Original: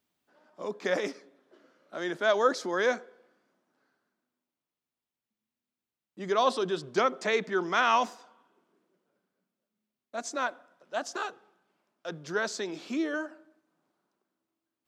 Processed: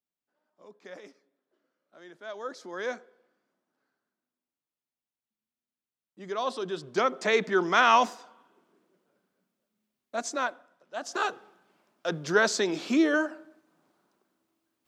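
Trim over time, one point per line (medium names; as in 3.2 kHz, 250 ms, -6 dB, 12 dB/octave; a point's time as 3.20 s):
2.22 s -16.5 dB
2.90 s -6 dB
6.40 s -6 dB
7.43 s +4 dB
10.17 s +4 dB
10.95 s -4.5 dB
11.27 s +7.5 dB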